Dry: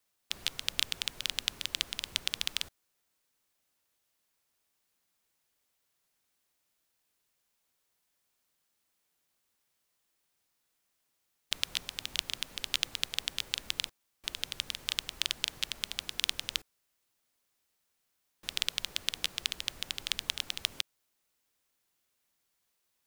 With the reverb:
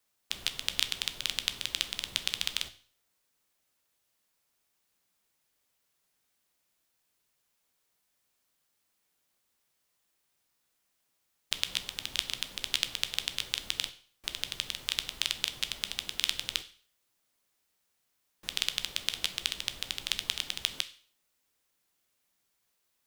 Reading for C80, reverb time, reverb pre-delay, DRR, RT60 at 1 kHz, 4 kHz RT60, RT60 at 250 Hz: 19.5 dB, 0.45 s, 11 ms, 9.5 dB, 0.45 s, 0.45 s, 0.45 s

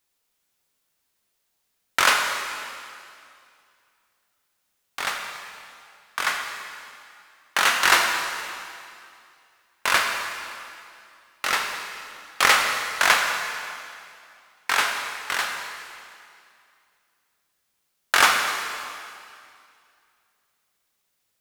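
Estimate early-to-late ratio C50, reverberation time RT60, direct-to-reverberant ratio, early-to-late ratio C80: 3.5 dB, 2.4 s, 2.0 dB, 4.5 dB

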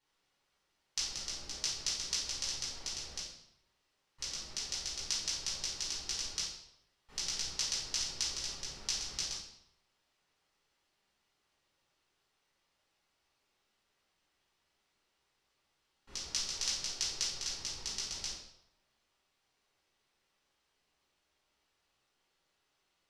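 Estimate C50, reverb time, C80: 2.5 dB, 0.80 s, 6.0 dB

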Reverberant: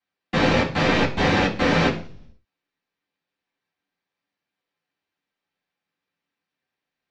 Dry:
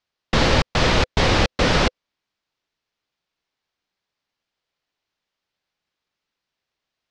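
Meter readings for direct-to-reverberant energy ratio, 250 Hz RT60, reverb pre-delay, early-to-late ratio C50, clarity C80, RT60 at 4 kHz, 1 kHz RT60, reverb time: -12.0 dB, 0.70 s, 3 ms, 9.5 dB, 15.0 dB, 0.55 s, 0.40 s, 0.45 s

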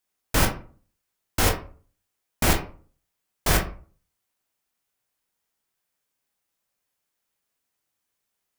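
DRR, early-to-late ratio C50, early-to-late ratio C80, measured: 2.0 dB, 9.5 dB, 15.0 dB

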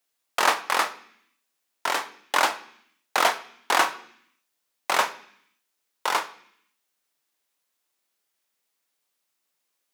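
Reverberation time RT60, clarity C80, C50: 0.65 s, 18.5 dB, 16.0 dB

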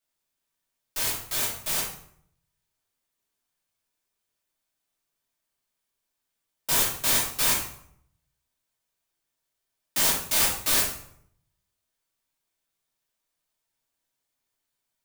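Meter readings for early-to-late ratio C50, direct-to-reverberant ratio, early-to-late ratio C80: 4.0 dB, -5.5 dB, 7.5 dB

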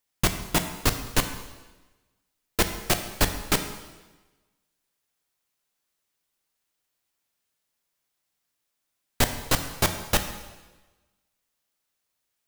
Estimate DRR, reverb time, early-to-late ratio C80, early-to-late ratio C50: 7.0 dB, 1.2 s, 10.5 dB, 9.0 dB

